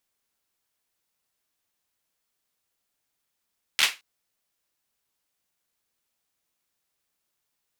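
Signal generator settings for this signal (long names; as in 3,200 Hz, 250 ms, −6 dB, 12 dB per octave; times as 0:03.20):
synth clap length 0.22 s, apart 13 ms, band 2,500 Hz, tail 0.23 s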